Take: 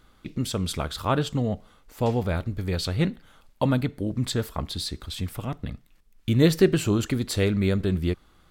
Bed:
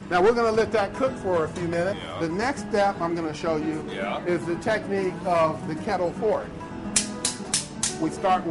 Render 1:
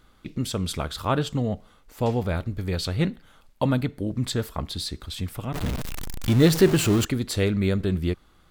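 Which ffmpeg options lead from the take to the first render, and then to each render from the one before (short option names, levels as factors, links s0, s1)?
-filter_complex "[0:a]asettb=1/sr,asplit=3[s0][s1][s2];[s0]atrim=end=5.544[s3];[s1]atrim=start=5.54:end=7.05,asetpts=PTS-STARTPTS,afade=t=in:d=0.004:c=qsin,afade=t=out:st=1.506:d=0.004:c=qsin,aeval=exprs='val(0)+0.5*0.0631*sgn(val(0))':c=same[s4];[s2]atrim=start=7.046[s5];[s3][s4]acrossfade=d=0.004:c1=hsin:c2=qsin[s6];[s6][s5]acrossfade=d=0.004:c1=qsin:c2=hsin"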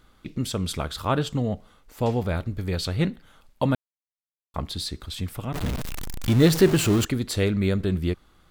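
-filter_complex "[0:a]asplit=3[s0][s1][s2];[s0]atrim=end=3.75,asetpts=PTS-STARTPTS,afade=t=out:st=3.746:d=0.004:c=hsin[s3];[s1]atrim=start=3.75:end=4.54,asetpts=PTS-STARTPTS,volume=0[s4];[s2]atrim=start=4.54,asetpts=PTS-STARTPTS,afade=t=in:d=0.004:c=hsin[s5];[s3][s4][s5]concat=n=3:v=0:a=1"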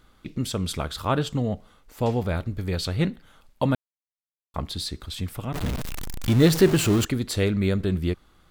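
-af anull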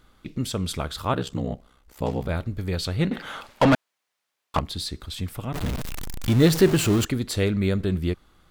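-filter_complex "[0:a]asplit=3[s0][s1][s2];[s0]afade=t=out:st=1.12:d=0.02[s3];[s1]aeval=exprs='val(0)*sin(2*PI*32*n/s)':c=same,afade=t=in:st=1.12:d=0.02,afade=t=out:st=2.28:d=0.02[s4];[s2]afade=t=in:st=2.28:d=0.02[s5];[s3][s4][s5]amix=inputs=3:normalize=0,asettb=1/sr,asplit=3[s6][s7][s8];[s6]atrim=end=3.114[s9];[s7]atrim=start=3.11:end=4.59,asetpts=PTS-STARTPTS,afade=t=in:d=0.004:c=qsin,afade=t=out:st=1.476:d=0.004:c=qsin,asplit=2[s10][s11];[s11]highpass=f=720:p=1,volume=31.6,asoftclip=type=tanh:threshold=0.355[s12];[s10][s12]amix=inputs=2:normalize=0,lowpass=f=2500:p=1,volume=0.501[s13];[s8]atrim=start=4.586[s14];[s9][s13]acrossfade=d=0.004:c1=hsin:c2=qsin[s15];[s15][s14]acrossfade=d=0.004:c1=qsin:c2=hsin"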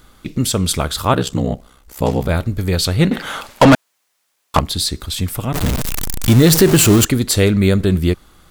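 -filter_complex "[0:a]acrossover=split=5800[s0][s1];[s1]acontrast=78[s2];[s0][s2]amix=inputs=2:normalize=0,alimiter=level_in=2.99:limit=0.891:release=50:level=0:latency=1"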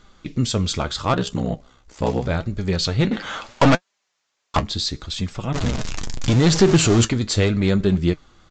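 -af "aresample=16000,aeval=exprs='clip(val(0),-1,0.316)':c=same,aresample=44100,flanger=delay=4.9:depth=4.8:regen=54:speed=0.76:shape=sinusoidal"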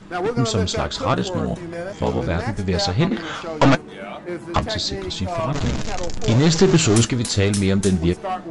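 -filter_complex "[1:a]volume=0.596[s0];[0:a][s0]amix=inputs=2:normalize=0"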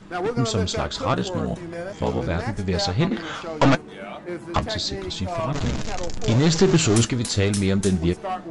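-af "volume=0.75"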